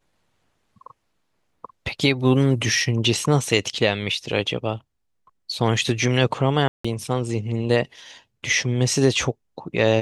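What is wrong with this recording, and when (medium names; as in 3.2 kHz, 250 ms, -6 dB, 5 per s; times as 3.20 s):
6.68–6.84 s: dropout 165 ms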